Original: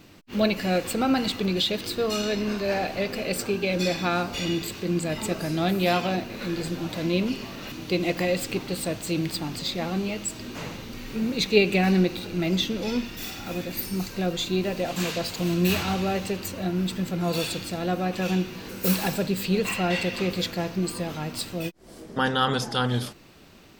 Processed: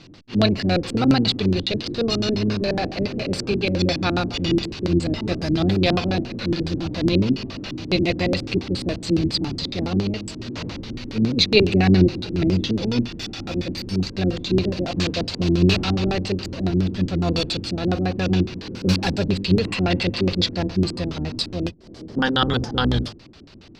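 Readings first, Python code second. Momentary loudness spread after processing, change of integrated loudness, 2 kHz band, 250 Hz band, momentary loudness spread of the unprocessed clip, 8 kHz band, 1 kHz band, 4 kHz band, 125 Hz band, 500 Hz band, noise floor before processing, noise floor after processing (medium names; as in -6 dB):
9 LU, +4.5 dB, +1.5 dB, +5.5 dB, 8 LU, -4.0 dB, +0.5 dB, +5.0 dB, +7.5 dB, +2.5 dB, -46 dBFS, -41 dBFS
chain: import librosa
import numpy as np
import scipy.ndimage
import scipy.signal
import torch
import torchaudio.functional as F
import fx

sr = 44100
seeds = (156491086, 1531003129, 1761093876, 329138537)

y = fx.octave_divider(x, sr, octaves=1, level_db=-2.0)
y = fx.filter_lfo_lowpass(y, sr, shape='square', hz=7.2, low_hz=310.0, high_hz=4700.0, q=2.3)
y = y * librosa.db_to_amplitude(2.5)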